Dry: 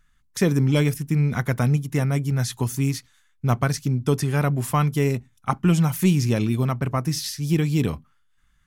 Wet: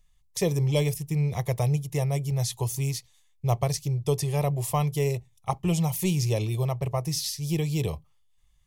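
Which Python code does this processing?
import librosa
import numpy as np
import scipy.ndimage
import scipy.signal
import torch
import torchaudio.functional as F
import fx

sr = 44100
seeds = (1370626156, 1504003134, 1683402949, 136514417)

y = fx.fixed_phaser(x, sr, hz=610.0, stages=4)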